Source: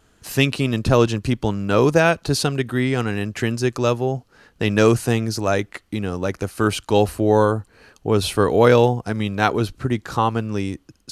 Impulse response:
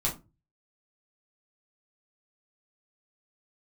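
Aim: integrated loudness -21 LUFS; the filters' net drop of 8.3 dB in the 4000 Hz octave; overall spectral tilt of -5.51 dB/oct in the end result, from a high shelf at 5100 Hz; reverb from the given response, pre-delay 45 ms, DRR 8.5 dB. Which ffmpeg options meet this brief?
-filter_complex "[0:a]equalizer=f=4k:t=o:g=-9,highshelf=f=5.1k:g=-5,asplit=2[a][b];[1:a]atrim=start_sample=2205,adelay=45[c];[b][c]afir=irnorm=-1:irlink=0,volume=-15dB[d];[a][d]amix=inputs=2:normalize=0,volume=-1.5dB"

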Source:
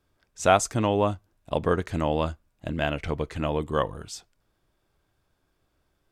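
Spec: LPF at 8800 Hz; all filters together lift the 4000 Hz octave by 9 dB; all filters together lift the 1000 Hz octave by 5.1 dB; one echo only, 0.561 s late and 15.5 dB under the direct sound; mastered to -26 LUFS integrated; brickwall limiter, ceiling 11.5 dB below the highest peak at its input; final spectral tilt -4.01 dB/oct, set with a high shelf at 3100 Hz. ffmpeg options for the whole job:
-af "lowpass=8.8k,equalizer=f=1k:t=o:g=6,highshelf=f=3.1k:g=5,equalizer=f=4k:t=o:g=8.5,alimiter=limit=-10.5dB:level=0:latency=1,aecho=1:1:561:0.168,volume=0.5dB"

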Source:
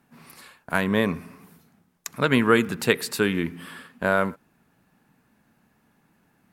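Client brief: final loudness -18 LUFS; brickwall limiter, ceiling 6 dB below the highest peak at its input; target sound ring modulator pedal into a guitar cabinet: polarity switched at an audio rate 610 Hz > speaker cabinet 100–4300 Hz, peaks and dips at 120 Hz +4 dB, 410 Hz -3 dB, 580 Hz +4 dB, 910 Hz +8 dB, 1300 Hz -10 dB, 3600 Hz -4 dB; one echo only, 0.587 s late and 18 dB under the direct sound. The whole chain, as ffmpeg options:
-af "alimiter=limit=-9.5dB:level=0:latency=1,aecho=1:1:587:0.126,aeval=exprs='val(0)*sgn(sin(2*PI*610*n/s))':c=same,highpass=100,equalizer=f=120:t=q:w=4:g=4,equalizer=f=410:t=q:w=4:g=-3,equalizer=f=580:t=q:w=4:g=4,equalizer=f=910:t=q:w=4:g=8,equalizer=f=1.3k:t=q:w=4:g=-10,equalizer=f=3.6k:t=q:w=4:g=-4,lowpass=f=4.3k:w=0.5412,lowpass=f=4.3k:w=1.3066,volume=6dB"

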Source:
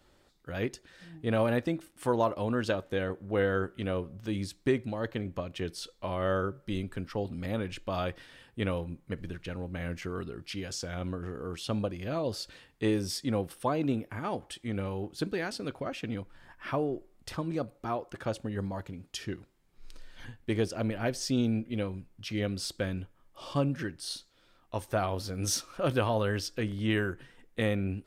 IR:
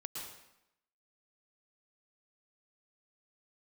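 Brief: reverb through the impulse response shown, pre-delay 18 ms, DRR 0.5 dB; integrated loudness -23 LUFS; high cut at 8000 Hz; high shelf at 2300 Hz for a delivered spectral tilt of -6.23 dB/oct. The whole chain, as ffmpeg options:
-filter_complex "[0:a]lowpass=8k,highshelf=f=2.3k:g=-5.5,asplit=2[a][b];[1:a]atrim=start_sample=2205,adelay=18[c];[b][c]afir=irnorm=-1:irlink=0,volume=0.5dB[d];[a][d]amix=inputs=2:normalize=0,volume=8dB"

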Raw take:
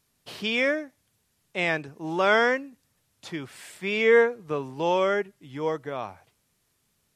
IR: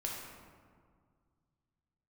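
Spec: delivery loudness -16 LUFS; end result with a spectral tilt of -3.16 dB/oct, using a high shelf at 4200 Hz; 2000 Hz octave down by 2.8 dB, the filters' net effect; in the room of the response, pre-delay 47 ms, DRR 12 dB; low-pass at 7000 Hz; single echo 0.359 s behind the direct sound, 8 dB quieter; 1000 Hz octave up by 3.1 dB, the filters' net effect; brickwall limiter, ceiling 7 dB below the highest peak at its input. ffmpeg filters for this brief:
-filter_complex "[0:a]lowpass=7k,equalizer=f=1k:t=o:g=5.5,equalizer=f=2k:t=o:g=-4.5,highshelf=f=4.2k:g=-5,alimiter=limit=-14dB:level=0:latency=1,aecho=1:1:359:0.398,asplit=2[a][b];[1:a]atrim=start_sample=2205,adelay=47[c];[b][c]afir=irnorm=-1:irlink=0,volume=-13.5dB[d];[a][d]amix=inputs=2:normalize=0,volume=11dB"

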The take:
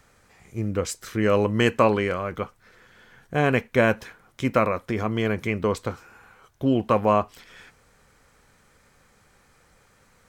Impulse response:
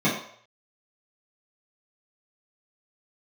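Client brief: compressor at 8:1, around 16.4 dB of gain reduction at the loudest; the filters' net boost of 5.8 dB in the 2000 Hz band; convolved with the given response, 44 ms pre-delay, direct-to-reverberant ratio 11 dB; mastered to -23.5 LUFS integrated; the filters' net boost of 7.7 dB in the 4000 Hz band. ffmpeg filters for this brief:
-filter_complex "[0:a]equalizer=f=2k:t=o:g=5,equalizer=f=4k:t=o:g=9,acompressor=threshold=-30dB:ratio=8,asplit=2[a][b];[1:a]atrim=start_sample=2205,adelay=44[c];[b][c]afir=irnorm=-1:irlink=0,volume=-26.5dB[d];[a][d]amix=inputs=2:normalize=0,volume=11dB"

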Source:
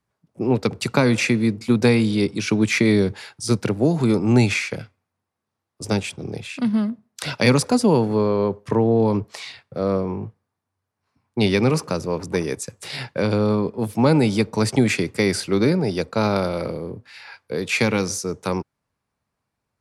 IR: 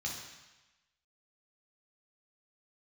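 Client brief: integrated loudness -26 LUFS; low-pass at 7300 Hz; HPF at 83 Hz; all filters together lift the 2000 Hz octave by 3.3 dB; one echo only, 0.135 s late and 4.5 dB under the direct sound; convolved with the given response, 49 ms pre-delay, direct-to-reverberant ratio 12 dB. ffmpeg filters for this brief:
-filter_complex "[0:a]highpass=83,lowpass=7.3k,equalizer=f=2k:t=o:g=4,aecho=1:1:135:0.596,asplit=2[a][b];[1:a]atrim=start_sample=2205,adelay=49[c];[b][c]afir=irnorm=-1:irlink=0,volume=-14dB[d];[a][d]amix=inputs=2:normalize=0,volume=-6.5dB"

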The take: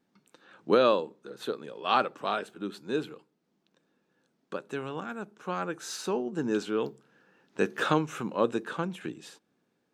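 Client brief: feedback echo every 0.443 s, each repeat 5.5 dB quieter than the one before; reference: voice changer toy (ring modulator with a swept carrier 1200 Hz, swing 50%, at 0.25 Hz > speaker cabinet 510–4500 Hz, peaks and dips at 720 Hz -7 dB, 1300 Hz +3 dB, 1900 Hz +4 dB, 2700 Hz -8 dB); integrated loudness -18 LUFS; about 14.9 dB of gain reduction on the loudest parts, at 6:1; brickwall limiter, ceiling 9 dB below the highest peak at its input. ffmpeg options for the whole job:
-af "acompressor=threshold=-34dB:ratio=6,alimiter=level_in=4.5dB:limit=-24dB:level=0:latency=1,volume=-4.5dB,aecho=1:1:443|886|1329|1772|2215|2658|3101:0.531|0.281|0.149|0.079|0.0419|0.0222|0.0118,aeval=exprs='val(0)*sin(2*PI*1200*n/s+1200*0.5/0.25*sin(2*PI*0.25*n/s))':c=same,highpass=510,equalizer=f=720:t=q:w=4:g=-7,equalizer=f=1.3k:t=q:w=4:g=3,equalizer=f=1.9k:t=q:w=4:g=4,equalizer=f=2.7k:t=q:w=4:g=-8,lowpass=f=4.5k:w=0.5412,lowpass=f=4.5k:w=1.3066,volume=25dB"

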